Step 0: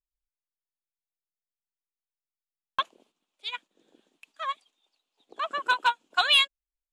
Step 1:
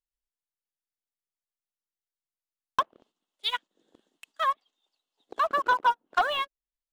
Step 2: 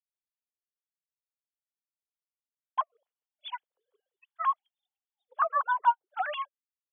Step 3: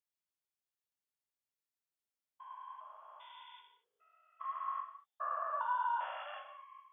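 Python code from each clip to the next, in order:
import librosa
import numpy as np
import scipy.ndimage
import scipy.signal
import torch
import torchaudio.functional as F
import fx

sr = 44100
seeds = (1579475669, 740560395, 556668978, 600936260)

y1 = fx.notch(x, sr, hz=2400.0, q=6.2)
y1 = fx.env_lowpass_down(y1, sr, base_hz=970.0, full_db=-25.5)
y1 = fx.leveller(y1, sr, passes=2)
y2 = fx.sine_speech(y1, sr)
y2 = y2 * 10.0 ** (-2.5 / 20.0)
y3 = fx.spec_steps(y2, sr, hold_ms=400)
y3 = fx.rev_gated(y3, sr, seeds[0], gate_ms=260, shape='falling', drr_db=2.5)
y3 = y3 * 10.0 ** (-1.5 / 20.0)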